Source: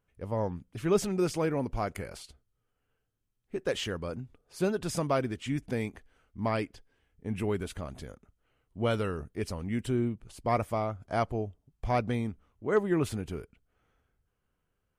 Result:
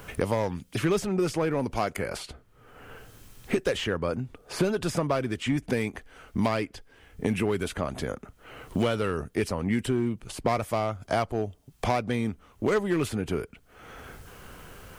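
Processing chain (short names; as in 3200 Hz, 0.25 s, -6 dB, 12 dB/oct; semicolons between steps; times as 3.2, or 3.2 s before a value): low shelf 320 Hz -5 dB; in parallel at -9.5 dB: wavefolder -30 dBFS; on the sum: three-band squash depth 100%; gain +4 dB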